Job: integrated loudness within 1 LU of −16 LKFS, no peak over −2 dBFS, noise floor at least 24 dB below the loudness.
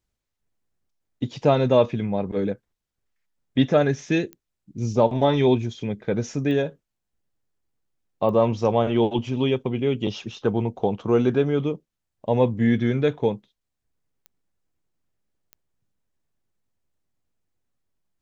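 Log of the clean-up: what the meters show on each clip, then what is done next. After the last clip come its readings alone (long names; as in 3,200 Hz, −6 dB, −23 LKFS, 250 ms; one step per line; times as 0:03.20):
number of clicks 5; integrated loudness −23.0 LKFS; sample peak −5.0 dBFS; target loudness −16.0 LKFS
→ click removal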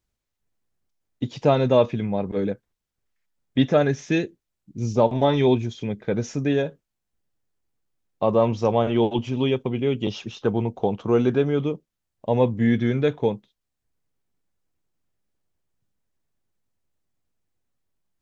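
number of clicks 0; integrated loudness −23.0 LKFS; sample peak −5.0 dBFS; target loudness −16.0 LKFS
→ level +7 dB
brickwall limiter −2 dBFS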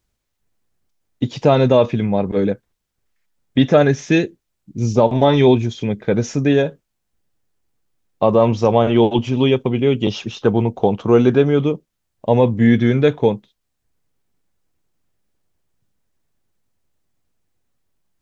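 integrated loudness −16.5 LKFS; sample peak −2.0 dBFS; background noise floor −74 dBFS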